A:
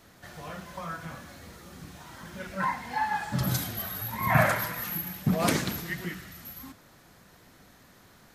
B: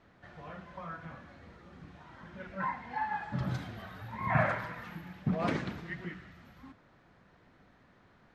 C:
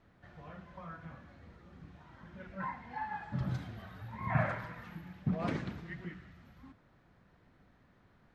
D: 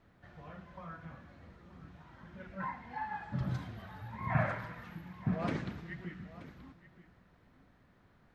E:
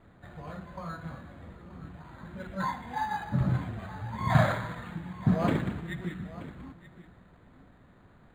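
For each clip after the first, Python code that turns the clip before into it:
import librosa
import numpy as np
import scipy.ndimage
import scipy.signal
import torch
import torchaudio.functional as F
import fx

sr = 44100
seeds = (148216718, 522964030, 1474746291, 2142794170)

y1 = scipy.signal.sosfilt(scipy.signal.butter(2, 2500.0, 'lowpass', fs=sr, output='sos'), x)
y1 = y1 * librosa.db_to_amplitude(-5.5)
y2 = fx.low_shelf(y1, sr, hz=190.0, db=7.0)
y2 = y2 * librosa.db_to_amplitude(-5.5)
y3 = y2 + 10.0 ** (-16.5 / 20.0) * np.pad(y2, (int(929 * sr / 1000.0), 0))[:len(y2)]
y4 = np.interp(np.arange(len(y3)), np.arange(len(y3))[::8], y3[::8])
y4 = y4 * librosa.db_to_amplitude(8.5)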